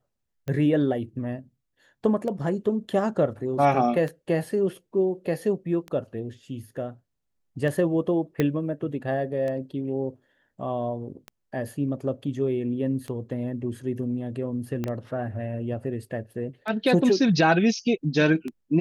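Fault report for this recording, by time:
tick 33 1/3 rpm -21 dBFS
8.40 s: pop -11 dBFS
14.84 s: pop -16 dBFS

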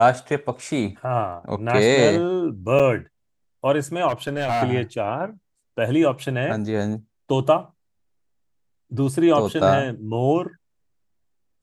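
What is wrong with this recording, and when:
2.79–2.80 s: dropout 6.4 ms
4.08–4.63 s: clipped -19 dBFS

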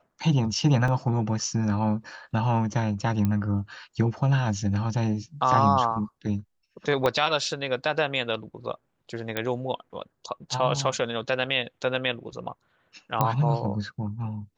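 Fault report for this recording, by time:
0.88 s: dropout 2.2 ms
3.25 s: pop -14 dBFS
7.06 s: pop -11 dBFS
9.37 s: pop -12 dBFS
13.21 s: pop -9 dBFS

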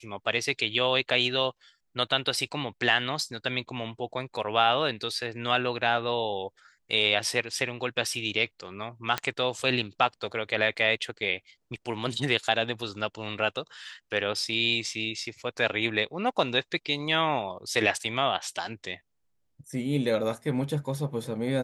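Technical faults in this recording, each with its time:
9.18 s: pop -11 dBFS

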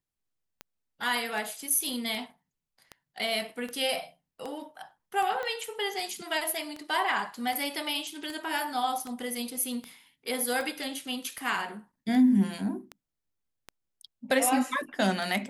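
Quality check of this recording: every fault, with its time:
tick 78 rpm -23 dBFS
5.43 s: pop -22 dBFS

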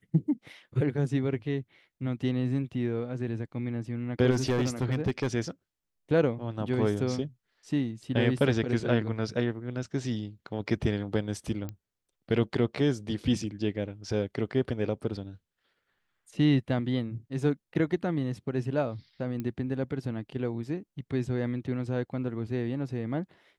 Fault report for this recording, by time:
4.30–5.28 s: clipped -21.5 dBFS
11.69 s: pop -24 dBFS
19.40 s: pop -22 dBFS

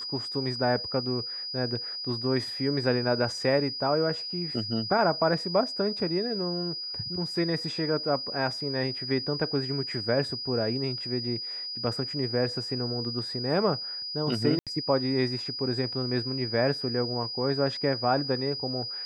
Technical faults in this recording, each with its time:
whine 4.9 kHz -33 dBFS
14.59–14.67 s: dropout 77 ms

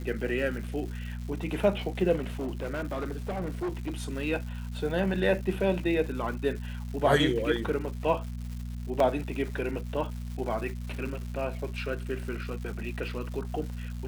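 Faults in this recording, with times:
crackle 360 per s -39 dBFS
hum 60 Hz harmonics 4 -36 dBFS
2.19–3.97 s: clipped -28 dBFS
9.00 s: dropout 2.8 ms

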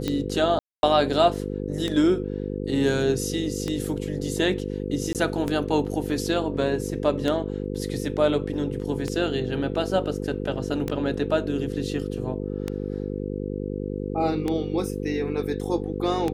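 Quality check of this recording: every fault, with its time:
buzz 50 Hz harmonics 10 -30 dBFS
tick 33 1/3 rpm -13 dBFS
0.59–0.83 s: dropout 241 ms
5.13–5.15 s: dropout 18 ms

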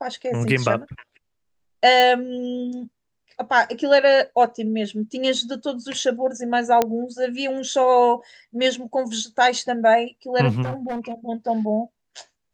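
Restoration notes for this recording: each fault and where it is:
2.00 s: pop -6 dBFS
6.82 s: pop -5 dBFS
10.62–11.12 s: clipped -23.5 dBFS

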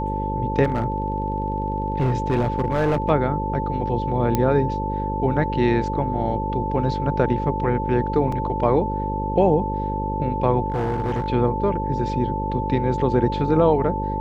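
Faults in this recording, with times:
buzz 50 Hz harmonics 11 -27 dBFS
whine 880 Hz -26 dBFS
0.63–3.10 s: clipped -15.5 dBFS
4.35 s: pop -7 dBFS
8.32 s: dropout 4.2 ms
10.70–11.28 s: clipped -19.5 dBFS

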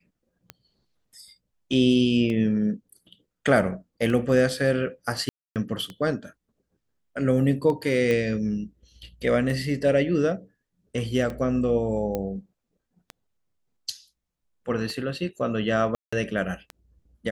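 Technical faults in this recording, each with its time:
tick 33 1/3 rpm -20 dBFS
5.29–5.56 s: dropout 268 ms
8.11 s: pop -14 dBFS
12.15 s: pop -15 dBFS
15.95–16.12 s: dropout 175 ms

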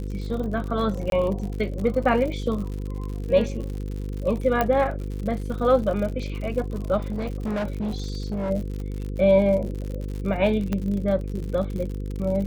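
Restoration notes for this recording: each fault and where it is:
buzz 50 Hz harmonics 10 -30 dBFS
crackle 74 per s -31 dBFS
1.10–1.12 s: dropout 22 ms
4.61 s: pop -9 dBFS
7.04–8.51 s: clipped -23.5 dBFS
10.73 s: pop -14 dBFS

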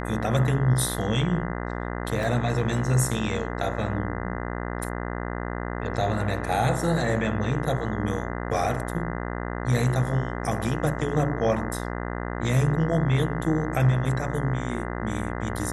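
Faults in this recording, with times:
buzz 60 Hz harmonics 34 -31 dBFS
2.23 s: dropout 2.2 ms

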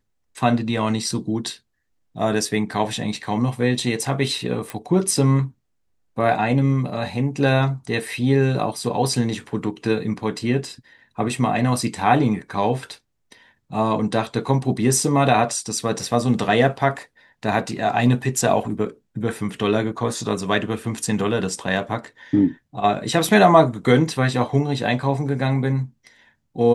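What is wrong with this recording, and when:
4.70 s: pop

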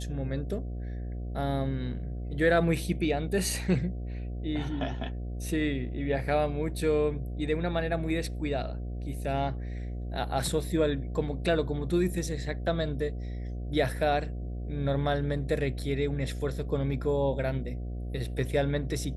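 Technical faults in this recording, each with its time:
buzz 60 Hz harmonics 12 -35 dBFS

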